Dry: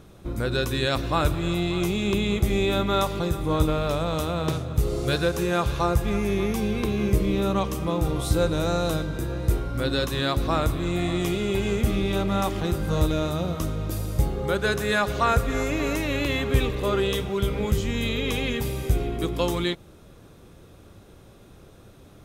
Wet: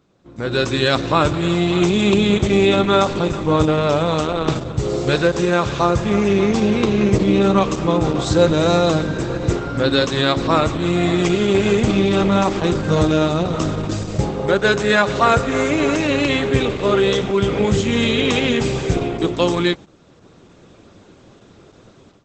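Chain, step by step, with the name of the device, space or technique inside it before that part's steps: video call (high-pass 130 Hz 12 dB/octave; level rider gain up to 15.5 dB; gate -29 dBFS, range -8 dB; trim -1 dB; Opus 12 kbps 48 kHz)

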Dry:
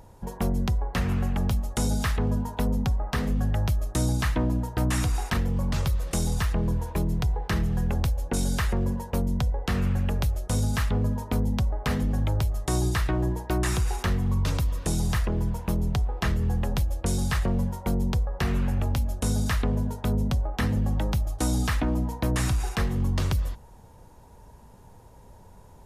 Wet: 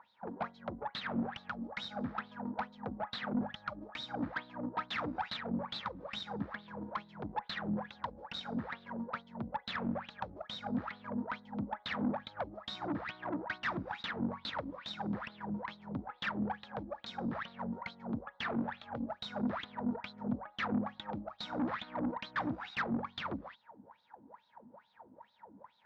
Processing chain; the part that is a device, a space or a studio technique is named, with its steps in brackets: wah-wah guitar rig (wah-wah 2.3 Hz 270–4000 Hz, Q 11; valve stage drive 45 dB, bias 0.6; cabinet simulation 98–4200 Hz, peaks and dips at 210 Hz +9 dB, 390 Hz -10 dB, 890 Hz +3 dB, 1.4 kHz +4 dB, 2.8 kHz -6 dB); trim +14.5 dB

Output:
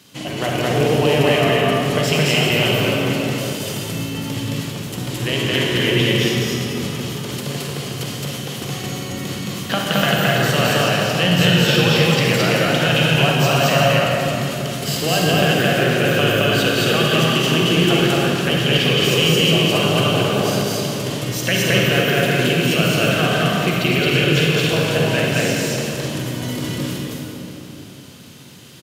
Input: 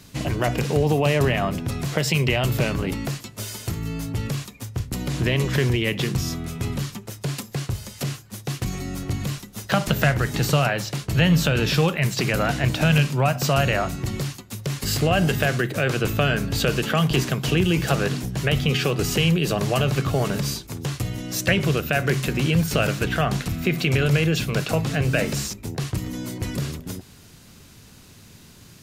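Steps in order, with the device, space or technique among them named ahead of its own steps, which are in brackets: stadium PA (high-pass 180 Hz 12 dB/octave; peaking EQ 3.1 kHz +8 dB 0.28 oct; loudspeakers at several distances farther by 75 m 0 dB, 91 m -9 dB; reverberation RT60 3.3 s, pre-delay 38 ms, DRR -2 dB); trim -1 dB

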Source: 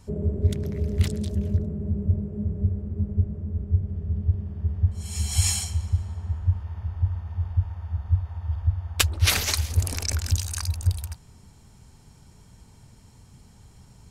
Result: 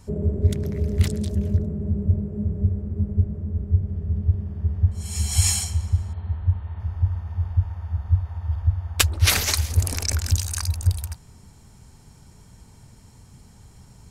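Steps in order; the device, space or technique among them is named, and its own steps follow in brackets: exciter from parts (in parallel at -14 dB: high-pass 2.1 kHz + saturation -16.5 dBFS, distortion -13 dB + high-pass 2.1 kHz 24 dB/octave); 6.13–6.80 s: on the sum: Chebyshev low-pass 4.3 kHz, order 10; trim +2.5 dB

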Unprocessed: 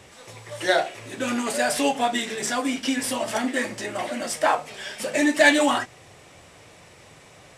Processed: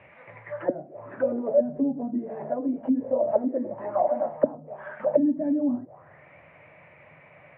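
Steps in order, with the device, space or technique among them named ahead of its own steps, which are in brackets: envelope filter bass rig (touch-sensitive low-pass 250–2600 Hz down, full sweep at -19.5 dBFS; cabinet simulation 67–2300 Hz, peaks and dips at 150 Hz +8 dB, 400 Hz -4 dB, 600 Hz +10 dB, 950 Hz +4 dB); trim -7.5 dB

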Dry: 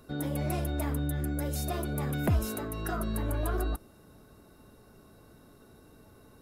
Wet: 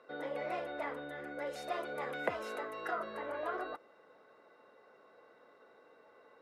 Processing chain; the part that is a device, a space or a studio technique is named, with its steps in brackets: tin-can telephone (band-pass 680–2300 Hz; small resonant body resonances 500/2000 Hz, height 11 dB, ringing for 45 ms); 1.47–2.91 s: treble shelf 6.1 kHz +9.5 dB; trim +1 dB

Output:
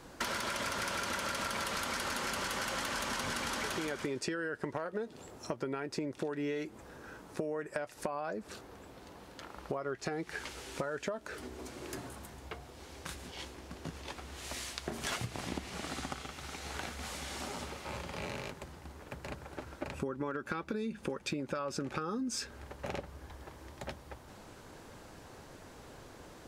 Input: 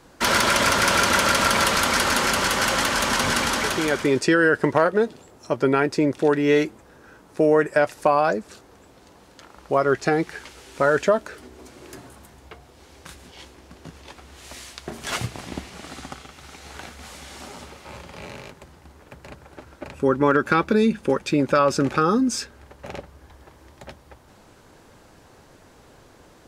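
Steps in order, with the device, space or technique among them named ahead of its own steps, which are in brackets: serial compression, peaks first (compression, threshold -26 dBFS, peak gain reduction 12.5 dB; compression 3:1, threshold -34 dBFS, peak gain reduction 8.5 dB); 8.07–9.99 s: peaking EQ 7.1 kHz -4 dB 1.2 oct; trim -1 dB

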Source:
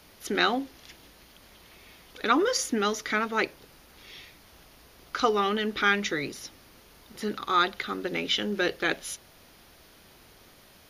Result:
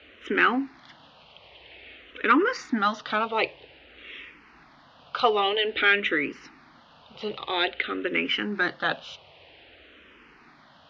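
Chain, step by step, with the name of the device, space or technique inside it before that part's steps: barber-pole phaser into a guitar amplifier (barber-pole phaser -0.51 Hz; saturation -16 dBFS, distortion -21 dB; cabinet simulation 86–3500 Hz, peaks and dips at 110 Hz -9 dB, 190 Hz -9 dB, 370 Hz -4 dB, 2.8 kHz +5 dB); trim +7 dB

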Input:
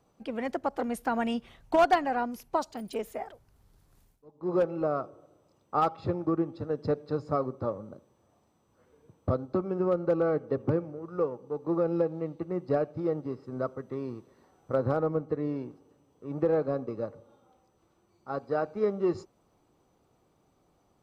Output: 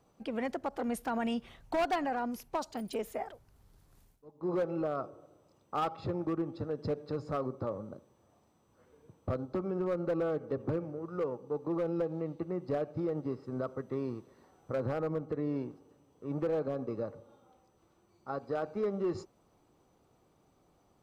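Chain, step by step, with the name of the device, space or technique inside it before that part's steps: clipper into limiter (hard clipper -20.5 dBFS, distortion -16 dB; peak limiter -26 dBFS, peak gain reduction 5.5 dB)

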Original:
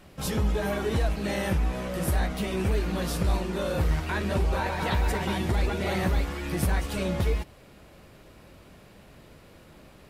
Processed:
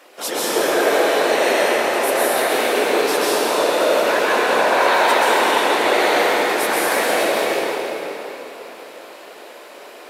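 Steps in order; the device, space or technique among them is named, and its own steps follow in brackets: whispering ghost (whisper effect; high-pass 390 Hz 24 dB/octave; reverberation RT60 3.8 s, pre-delay 117 ms, DRR -7 dB); trim +8 dB

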